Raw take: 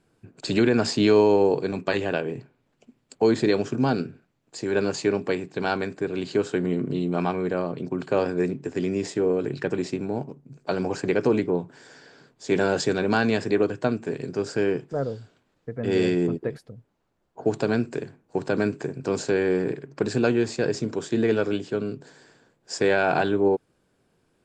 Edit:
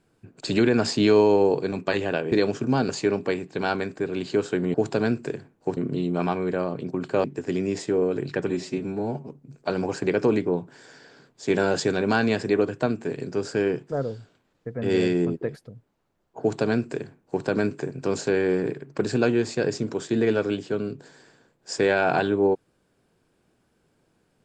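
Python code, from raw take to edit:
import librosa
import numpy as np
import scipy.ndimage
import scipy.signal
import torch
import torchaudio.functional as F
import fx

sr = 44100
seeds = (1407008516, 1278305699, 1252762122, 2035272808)

y = fx.edit(x, sr, fx.cut(start_s=2.32, length_s=1.11),
    fx.cut(start_s=4.0, length_s=0.9),
    fx.cut(start_s=8.22, length_s=0.3),
    fx.stretch_span(start_s=9.77, length_s=0.53, factor=1.5),
    fx.duplicate(start_s=17.42, length_s=1.03, to_s=6.75), tone=tone)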